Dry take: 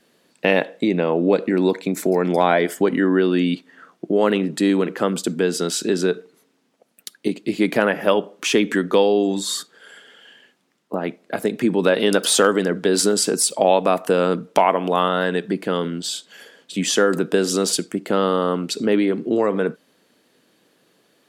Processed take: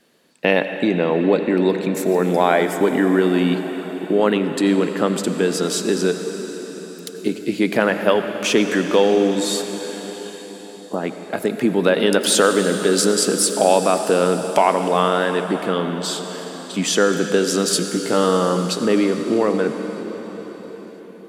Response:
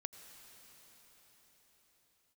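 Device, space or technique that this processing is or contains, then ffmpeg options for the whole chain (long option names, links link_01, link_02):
cathedral: -filter_complex "[1:a]atrim=start_sample=2205[link_01];[0:a][link_01]afir=irnorm=-1:irlink=0,asettb=1/sr,asplit=3[link_02][link_03][link_04];[link_02]atrim=end=17.694[link_05];[link_03]atrim=start=17.69:end=18.85,asetpts=PTS-STARTPTS,afade=type=in:duration=0.004:curve=qsin,afade=type=out:start_time=1.156:duration=0.004:curve=qsin,asplit=2[link_06][link_07];[link_07]adelay=17,volume=-5.5dB[link_08];[link_06][link_08]amix=inputs=2:normalize=0,atrim=end_sample=51156[link_09];[link_04]atrim=start=18.846[link_10];[link_05][link_09]acrossfade=duration=0.004:curve1=hsin:curve2=qsin[link_11];[link_11][link_10]acrossfade=duration=0.004:curve1=qsin:curve2=hsin,volume=4.5dB"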